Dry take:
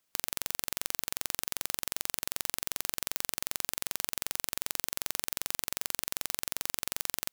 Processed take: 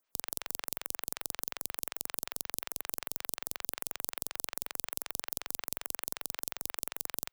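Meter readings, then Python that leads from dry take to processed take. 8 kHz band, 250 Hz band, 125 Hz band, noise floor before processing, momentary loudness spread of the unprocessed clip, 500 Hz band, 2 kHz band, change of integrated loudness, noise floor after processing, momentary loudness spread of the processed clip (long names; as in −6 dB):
−5.0 dB, −2.5 dB, −6.0 dB, −78 dBFS, 0 LU, −1.5 dB, −4.5 dB, −3.0 dB, −83 dBFS, 0 LU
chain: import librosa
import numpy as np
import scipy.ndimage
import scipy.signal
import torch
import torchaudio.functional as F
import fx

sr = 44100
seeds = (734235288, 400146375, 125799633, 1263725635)

y = fx.stagger_phaser(x, sr, hz=5.4)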